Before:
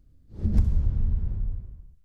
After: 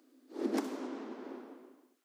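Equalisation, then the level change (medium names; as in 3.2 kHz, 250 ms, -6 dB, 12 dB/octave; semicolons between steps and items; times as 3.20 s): rippled Chebyshev high-pass 250 Hz, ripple 3 dB; +11.0 dB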